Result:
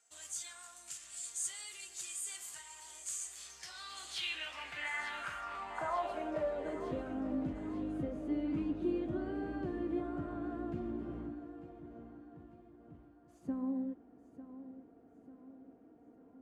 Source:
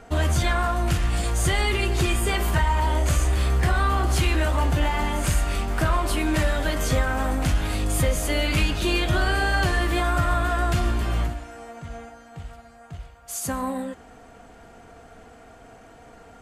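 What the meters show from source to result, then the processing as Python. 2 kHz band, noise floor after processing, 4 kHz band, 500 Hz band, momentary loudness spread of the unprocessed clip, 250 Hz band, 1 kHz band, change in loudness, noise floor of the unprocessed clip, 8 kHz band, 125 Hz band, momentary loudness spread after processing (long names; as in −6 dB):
−18.0 dB, −62 dBFS, −16.0 dB, −13.0 dB, 17 LU, −9.0 dB, −17.5 dB, −16.0 dB, −48 dBFS, −10.5 dB, −27.0 dB, 19 LU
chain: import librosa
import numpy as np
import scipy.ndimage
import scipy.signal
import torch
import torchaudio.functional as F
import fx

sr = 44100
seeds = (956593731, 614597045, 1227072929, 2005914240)

p1 = fx.filter_sweep_bandpass(x, sr, from_hz=7500.0, to_hz=290.0, start_s=3.3, end_s=7.15, q=3.6)
p2 = p1 + fx.echo_feedback(p1, sr, ms=897, feedback_pct=47, wet_db=-13.5, dry=0)
y = F.gain(torch.from_numpy(p2), -3.0).numpy()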